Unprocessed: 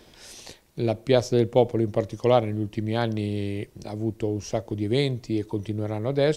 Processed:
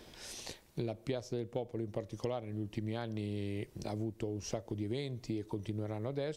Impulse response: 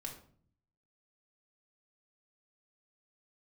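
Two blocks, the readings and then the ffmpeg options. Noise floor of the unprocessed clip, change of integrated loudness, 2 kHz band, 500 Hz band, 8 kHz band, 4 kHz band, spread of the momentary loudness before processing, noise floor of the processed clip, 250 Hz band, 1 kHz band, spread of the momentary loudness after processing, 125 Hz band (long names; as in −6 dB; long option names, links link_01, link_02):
−53 dBFS, −14.0 dB, −14.0 dB, −15.5 dB, −6.5 dB, −13.0 dB, 13 LU, −60 dBFS, −12.5 dB, −16.5 dB, 3 LU, −12.0 dB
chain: -af "acompressor=threshold=-31dB:ratio=10,volume=-2.5dB"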